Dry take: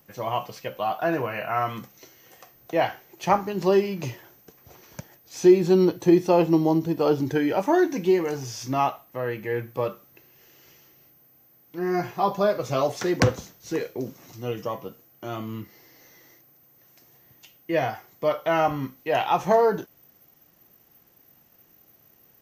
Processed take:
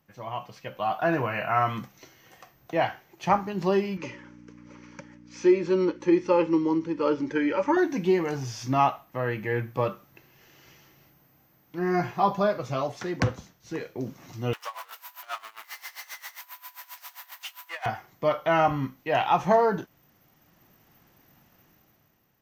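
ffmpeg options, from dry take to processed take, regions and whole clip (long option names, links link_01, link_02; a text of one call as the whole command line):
ffmpeg -i in.wav -filter_complex "[0:a]asettb=1/sr,asplit=3[link_01][link_02][link_03];[link_01]atrim=end=3.974[link_04];[link_02]atrim=start=3.97:end=7.77,asetpts=PTS-STARTPTS,afade=type=in:duration=0.004:curve=qsin,afade=type=out:start_time=3.796:duration=0.004:curve=qsin,aeval=exprs='val(0)+0.0158*(sin(2*PI*60*n/s)+sin(2*PI*2*60*n/s)/2+sin(2*PI*3*60*n/s)/3+sin(2*PI*4*60*n/s)/4+sin(2*PI*5*60*n/s)/5)':channel_layout=same,asuperstop=centerf=700:order=12:qfactor=2.9,highpass=300,equalizer=frequency=300:width_type=q:width=4:gain=4,equalizer=frequency=570:width_type=q:width=4:gain=6,equalizer=frequency=1300:width_type=q:width=4:gain=3,equalizer=frequency=2200:width_type=q:width=4:gain=5,equalizer=frequency=3800:width_type=q:width=4:gain=-6,lowpass=frequency=6700:width=0.5412,lowpass=frequency=6700:width=1.3066[link_05];[link_03]atrim=start=7.766[link_06];[link_04][link_05]acrossfade=duration=0.004:curve1=hsin:curve2=qsin[link_07];[link_07][link_06]acrossfade=duration=0.004:curve1=qsin:curve2=hsin,asettb=1/sr,asplit=3[link_08][link_09][link_10];[link_08]atrim=end=14.534[link_11];[link_09]atrim=start=14.53:end=17.86,asetpts=PTS-STARTPTS,afade=type=in:duration=0.004:curve=qsin,afade=type=out:start_time=3.326:duration=0.004:curve=qsin,aeval=exprs='val(0)+0.5*0.0335*sgn(val(0))':channel_layout=same,highpass=frequency=840:width=0.5412,highpass=frequency=840:width=1.3066,aeval=exprs='val(0)*pow(10,-20*(0.5-0.5*cos(2*PI*7.5*n/s))/20)':channel_layout=same[link_12];[link_10]atrim=start=17.856[link_13];[link_11][link_12]acrossfade=duration=0.004:curve1=hsin:curve2=qsin[link_14];[link_14][link_13]acrossfade=duration=0.004:curve1=qsin:curve2=hsin,dynaudnorm=framelen=140:gausssize=11:maxgain=11dB,lowpass=frequency=3000:poles=1,equalizer=frequency=450:width_type=o:width=1.1:gain=-6,volume=-5.5dB" out.wav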